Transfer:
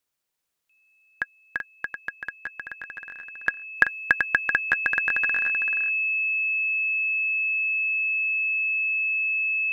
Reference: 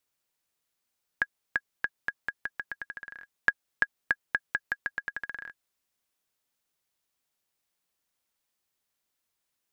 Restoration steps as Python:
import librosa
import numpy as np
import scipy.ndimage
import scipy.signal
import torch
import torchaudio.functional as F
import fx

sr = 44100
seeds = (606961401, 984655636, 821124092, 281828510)

y = fx.notch(x, sr, hz=2600.0, q=30.0)
y = fx.fix_echo_inverse(y, sr, delay_ms=384, level_db=-6.5)
y = fx.fix_level(y, sr, at_s=3.77, step_db=-7.5)